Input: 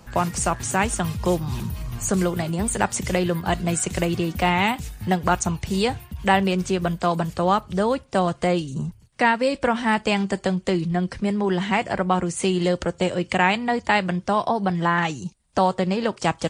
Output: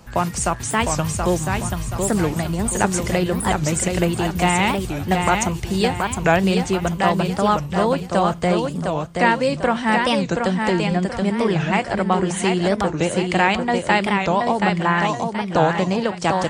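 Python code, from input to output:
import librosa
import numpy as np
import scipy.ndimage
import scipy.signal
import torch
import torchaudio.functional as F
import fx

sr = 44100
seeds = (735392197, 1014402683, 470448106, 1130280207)

p1 = x + fx.echo_feedback(x, sr, ms=727, feedback_pct=39, wet_db=-4.5, dry=0)
p2 = fx.record_warp(p1, sr, rpm=45.0, depth_cents=250.0)
y = F.gain(torch.from_numpy(p2), 1.5).numpy()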